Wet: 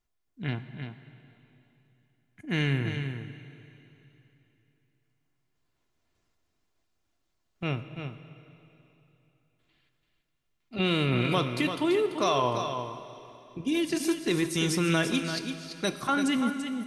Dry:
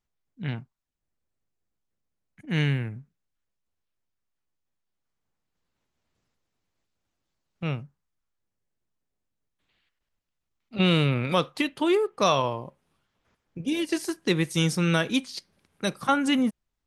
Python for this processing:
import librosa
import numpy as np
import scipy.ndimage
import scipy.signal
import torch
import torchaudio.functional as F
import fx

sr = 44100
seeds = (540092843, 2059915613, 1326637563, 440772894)

p1 = x + 0.35 * np.pad(x, (int(2.9 * sr / 1000.0), 0))[:len(x)]
p2 = fx.over_compress(p1, sr, threshold_db=-26.0, ratio=-1.0)
p3 = p1 + F.gain(torch.from_numpy(p2), 1.5).numpy()
p4 = p3 + 10.0 ** (-8.0 / 20.0) * np.pad(p3, (int(338 * sr / 1000.0), 0))[:len(p3)]
p5 = fx.rev_plate(p4, sr, seeds[0], rt60_s=3.2, hf_ratio=1.0, predelay_ms=0, drr_db=10.5)
y = F.gain(torch.from_numpy(p5), -8.0).numpy()